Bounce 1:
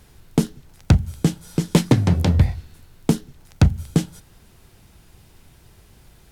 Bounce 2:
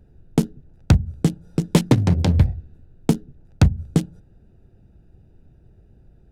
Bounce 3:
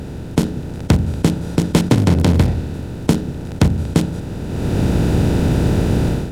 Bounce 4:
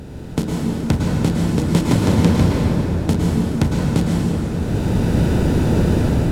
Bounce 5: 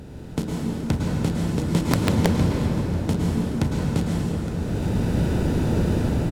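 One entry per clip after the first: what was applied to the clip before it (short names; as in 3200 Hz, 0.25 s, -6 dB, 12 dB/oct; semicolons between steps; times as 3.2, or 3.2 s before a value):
Wiener smoothing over 41 samples
per-bin compression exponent 0.4; low shelf 120 Hz -5.5 dB; AGC gain up to 15 dB; gain -1 dB
plate-style reverb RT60 4.1 s, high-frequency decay 0.55×, pre-delay 95 ms, DRR -4 dB; gain -5.5 dB
echo 0.866 s -13.5 dB; wrapped overs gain 3.5 dB; gain -5.5 dB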